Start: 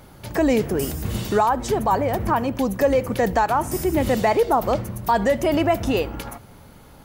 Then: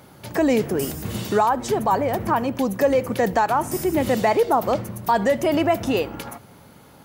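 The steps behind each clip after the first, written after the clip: HPF 110 Hz 12 dB/oct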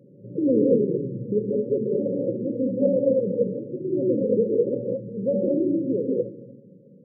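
non-linear reverb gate 0.25 s rising, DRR -3 dB; FFT band-pass 110–580 Hz; vocal rider within 5 dB 2 s; gain -5 dB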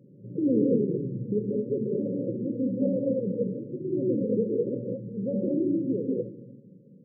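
Gaussian blur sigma 18 samples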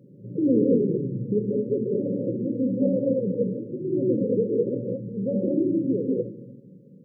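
de-hum 71.34 Hz, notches 5; gain +3.5 dB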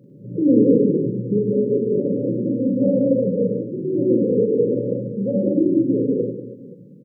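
reverse bouncing-ball echo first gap 40 ms, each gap 1.5×, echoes 5; gain +3 dB

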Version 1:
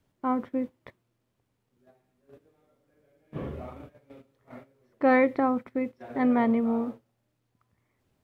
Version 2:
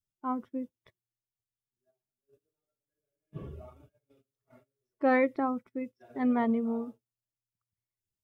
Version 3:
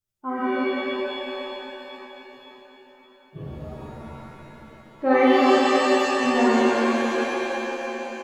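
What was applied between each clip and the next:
per-bin expansion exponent 1.5; gain -2.5 dB
feedback echo 0.531 s, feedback 57%, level -15 dB; shimmer reverb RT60 2.8 s, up +7 st, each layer -2 dB, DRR -7 dB

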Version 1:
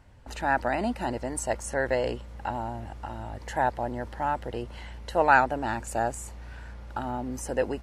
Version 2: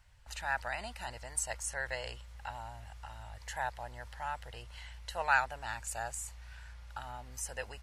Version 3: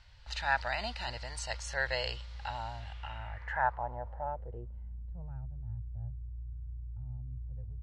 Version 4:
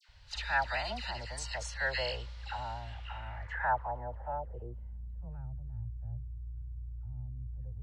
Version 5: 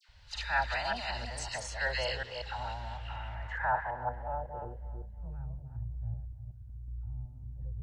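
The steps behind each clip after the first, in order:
passive tone stack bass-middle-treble 10-0-10
harmonic-percussive split harmonic +6 dB; low-pass sweep 4400 Hz -> 120 Hz, 2.76–5.36
dispersion lows, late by 87 ms, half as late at 1500 Hz
reverse delay 0.186 s, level -5 dB; darkening echo 0.315 s, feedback 33%, low-pass 2800 Hz, level -15 dB

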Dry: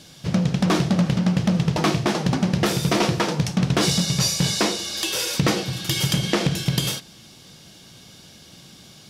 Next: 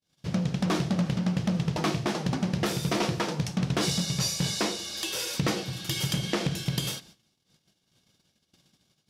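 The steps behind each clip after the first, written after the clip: gate -43 dBFS, range -42 dB; gain -7 dB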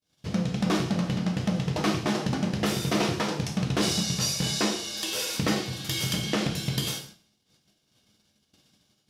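non-linear reverb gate 0.18 s falling, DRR 3 dB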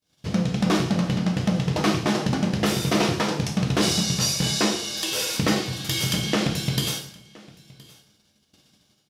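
echo 1.019 s -23.5 dB; gain +4 dB

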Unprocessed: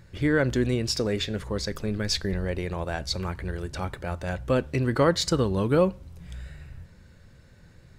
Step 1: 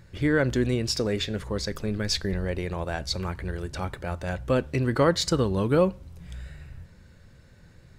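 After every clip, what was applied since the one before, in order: nothing audible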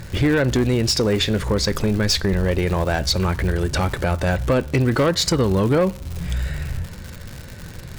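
compressor 2.5:1, threshold -34 dBFS, peak gain reduction 12 dB; sine folder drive 4 dB, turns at -21 dBFS; crackle 200/s -35 dBFS; gain +8.5 dB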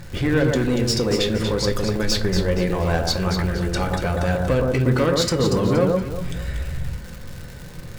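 echo with dull and thin repeats by turns 0.118 s, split 1400 Hz, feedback 56%, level -2 dB; reverb RT60 0.40 s, pre-delay 4 ms, DRR 6.5 dB; gain -4 dB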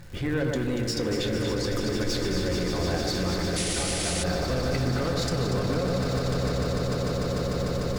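swelling echo 0.149 s, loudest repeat 8, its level -10 dB; painted sound noise, 3.56–4.24, 1800–11000 Hz -21 dBFS; limiter -10 dBFS, peak gain reduction 6 dB; gain -7.5 dB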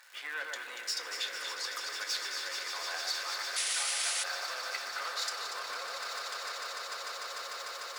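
ladder high-pass 860 Hz, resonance 20%; gain +3 dB

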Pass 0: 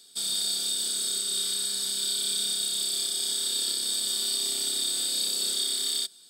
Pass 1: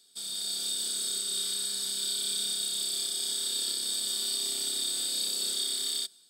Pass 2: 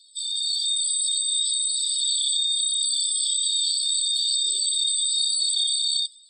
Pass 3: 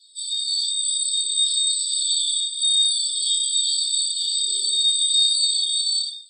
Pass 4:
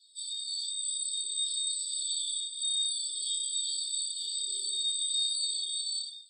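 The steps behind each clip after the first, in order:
AGC gain up to 5 dB; gain -8 dB
spectral contrast raised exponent 2.8; HPF 280 Hz 12 dB/oct; gain +8.5 dB
shoebox room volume 560 m³, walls furnished, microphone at 9.4 m; gain -8 dB
dynamic EQ 4200 Hz, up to -4 dB, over -29 dBFS, Q 0.86; gain -8.5 dB

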